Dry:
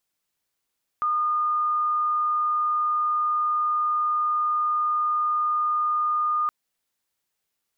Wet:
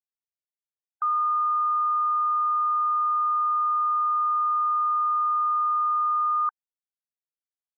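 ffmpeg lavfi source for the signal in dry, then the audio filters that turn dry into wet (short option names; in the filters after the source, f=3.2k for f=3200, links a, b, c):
-f lavfi -i "sine=f=1220:d=5.47:r=44100,volume=-2.44dB"
-af "afftfilt=real='re*gte(hypot(re,im),0.0251)':imag='im*gte(hypot(re,im),0.0251)':win_size=1024:overlap=0.75"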